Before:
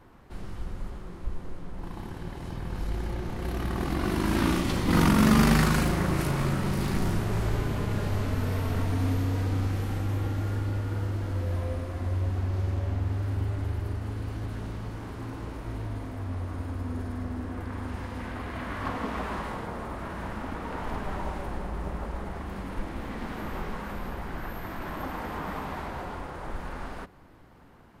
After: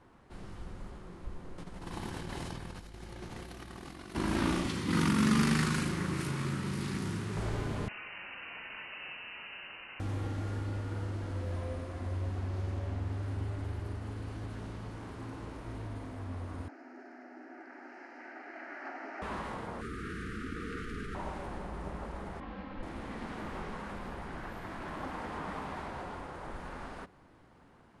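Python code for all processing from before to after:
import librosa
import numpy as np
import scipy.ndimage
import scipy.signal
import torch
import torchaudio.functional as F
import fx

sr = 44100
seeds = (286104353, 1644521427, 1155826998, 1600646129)

y = fx.chain(x, sr, fx.high_shelf(hz=2200.0, db=8.5),
    fx.over_compress(threshold_db=-37.0, ratio=-1.0), at=(1.58, 4.15))
y = fx.chain(y, sr, fx.highpass(hz=91.0, slope=12),
    fx.peak_eq(hz=660.0, db=-12.5, octaves=0.82), at=(4.68, 7.37))
y = fx.chain(y, sr, fx.highpass(hz=1000.0, slope=6),
    fx.freq_invert(carrier_hz=2900), at=(7.88, 10.0))
y = fx.chain(y, sr, fx.ellip_bandpass(low_hz=340.0, high_hz=5400.0, order=3, stop_db=50),
    fx.fixed_phaser(hz=710.0, stages=8), at=(16.68, 19.22))
y = fx.chain(y, sr, fx.cheby1_bandstop(low_hz=470.0, high_hz=1200.0, order=5),
    fx.env_flatten(amount_pct=50), at=(19.81, 21.15))
y = fx.chain(y, sr, fx.lowpass(hz=4100.0, slope=24),
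    fx.comb(ms=3.8, depth=0.92),
    fx.detune_double(cents=49), at=(22.4, 22.83))
y = scipy.signal.sosfilt(scipy.signal.butter(8, 11000.0, 'lowpass', fs=sr, output='sos'), y)
y = fx.low_shelf(y, sr, hz=72.0, db=-7.0)
y = y * 10.0 ** (-4.5 / 20.0)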